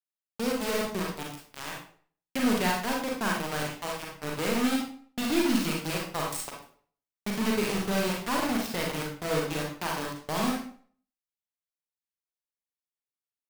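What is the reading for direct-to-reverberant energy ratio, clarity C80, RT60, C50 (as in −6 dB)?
−2.0 dB, 8.0 dB, 0.50 s, 2.5 dB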